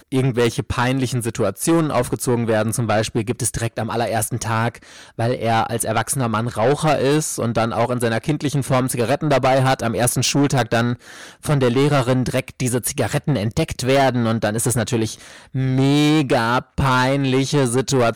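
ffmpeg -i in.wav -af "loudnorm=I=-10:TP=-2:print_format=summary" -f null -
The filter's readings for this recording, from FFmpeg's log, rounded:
Input Integrated:    -19.0 LUFS
Input True Peak:      -7.5 dBTP
Input LRA:             2.5 LU
Input Threshold:     -29.2 LUFS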